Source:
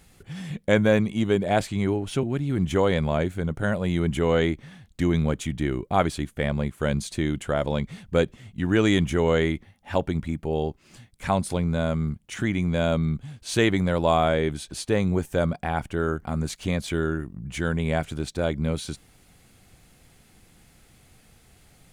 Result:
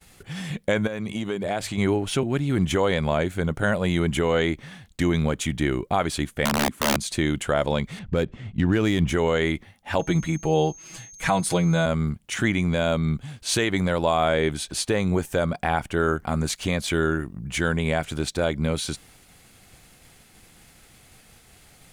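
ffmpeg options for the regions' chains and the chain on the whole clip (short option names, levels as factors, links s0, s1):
-filter_complex "[0:a]asettb=1/sr,asplit=3[s0][s1][s2];[s0]atrim=end=0.874[s3];[s1]atrim=start=0.87:end=1.78,asetpts=PTS-STARTPTS,afade=t=in:d=0.004:c=qsin,afade=t=out:st=0.906:d=0.004:c=qsin,bandreject=f=50:t=h:w=6,bandreject=f=100:t=h:w=6,acompressor=threshold=0.0447:ratio=6:attack=3.2:release=140:knee=1:detection=peak[s4];[s2]atrim=start=1.776[s5];[s3][s4]acrossfade=d=0.004:c1=hsin:c2=qsin[s6];[s6][s5]acrossfade=d=0.004:c1=qsin:c2=hsin,asettb=1/sr,asplit=3[s7][s8][s9];[s7]atrim=end=6.454[s10];[s8]atrim=start=6.45:end=6.97,asetpts=PTS-STARTPTS,afade=t=in:d=0.004:c=qsin,afade=t=out:st=0.516:d=0.004:c=qsin,equalizer=f=250:t=o:w=0.76:g=14,aeval=exprs='(mod(4.73*val(0)+1,2)-1)/4.73':c=same[s11];[s9]atrim=start=6.966[s12];[s10][s11]acrossfade=d=0.004:c1=hsin:c2=qsin[s13];[s13][s12]acrossfade=d=0.004:c1=qsin:c2=hsin,asettb=1/sr,asplit=3[s14][s15][s16];[s14]atrim=end=7.994[s17];[s15]atrim=start=7.99:end=9.1,asetpts=PTS-STARTPTS,afade=t=in:d=0.004:c=qsin,afade=t=out:st=1.106:d=0.004:c=qsin,lowshelf=f=330:g=8.5,adynamicsmooth=sensitivity=7:basefreq=3700[s18];[s16]atrim=start=9.096[s19];[s17][s18]acrossfade=d=0.004:c1=hsin:c2=qsin[s20];[s20][s19]acrossfade=d=0.004:c1=qsin:c2=hsin,asettb=1/sr,asplit=3[s21][s22][s23];[s21]atrim=end=9.994[s24];[s22]atrim=start=9.99:end=11.86,asetpts=PTS-STARTPTS,afade=t=in:d=0.004:c=qsin,afade=t=out:st=1.866:d=0.004:c=qsin,aecho=1:1:6.2:0.81,atrim=end_sample=82467,aeval=exprs='val(0)+0.00316*sin(2*PI*6400*n/s)':c=same[s25];[s23]atrim=start=11.856[s26];[s24][s25]acrossfade=d=0.004:c1=hsin:c2=qsin[s27];[s27][s26]acrossfade=d=0.004:c1=qsin:c2=hsin,agate=range=0.0224:threshold=0.00224:ratio=3:detection=peak,lowshelf=f=460:g=-6,alimiter=limit=0.133:level=0:latency=1:release=167,volume=2.24"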